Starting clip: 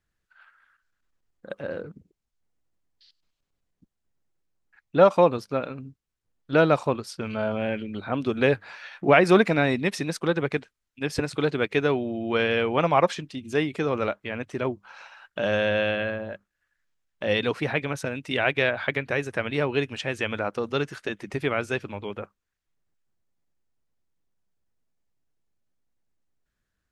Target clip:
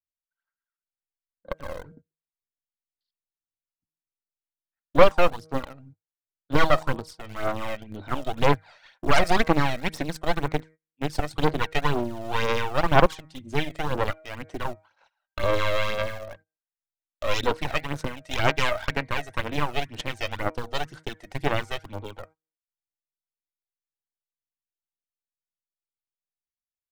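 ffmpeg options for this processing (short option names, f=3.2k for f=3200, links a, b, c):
-filter_complex "[0:a]bandreject=f=1.7k:w=10,bandreject=f=158:t=h:w=4,bandreject=f=316:t=h:w=4,bandreject=f=474:t=h:w=4,bandreject=f=632:t=h:w=4,bandreject=f=790:t=h:w=4,bandreject=f=948:t=h:w=4,bandreject=f=1.106k:t=h:w=4,bandreject=f=1.264k:t=h:w=4,bandreject=f=1.422k:t=h:w=4,bandreject=f=1.58k:t=h:w=4,bandreject=f=1.738k:t=h:w=4,bandreject=f=1.896k:t=h:w=4,bandreject=f=2.054k:t=h:w=4,bandreject=f=2.212k:t=h:w=4,bandreject=f=2.37k:t=h:w=4,agate=range=-24dB:threshold=-44dB:ratio=16:detection=peak,equalizer=f=100:t=o:w=0.33:g=4,equalizer=f=200:t=o:w=0.33:g=-7,equalizer=f=400:t=o:w=0.33:g=-5,equalizer=f=1.25k:t=o:w=0.33:g=-7,equalizer=f=2.5k:t=o:w=0.33:g=-9,equalizer=f=8k:t=o:w=0.33:g=4,acrossover=split=120|4900[a][b][c];[b]dynaudnorm=f=190:g=7:m=5.5dB[d];[a][d][c]amix=inputs=3:normalize=0,aeval=exprs='0.75*(cos(1*acos(clip(val(0)/0.75,-1,1)))-cos(1*PI/2))+0.119*(cos(2*acos(clip(val(0)/0.75,-1,1)))-cos(2*PI/2))+0.00596*(cos(3*acos(clip(val(0)/0.75,-1,1)))-cos(3*PI/2))+0.0841*(cos(4*acos(clip(val(0)/0.75,-1,1)))-cos(4*PI/2))+0.299*(cos(6*acos(clip(val(0)/0.75,-1,1)))-cos(6*PI/2))':c=same,asplit=2[e][f];[f]acrusher=bits=3:mix=0:aa=0.000001,volume=-11.5dB[g];[e][g]amix=inputs=2:normalize=0,aphaser=in_gain=1:out_gain=1:delay=1.6:decay=0.55:speed=2:type=sinusoidal,volume=-10.5dB"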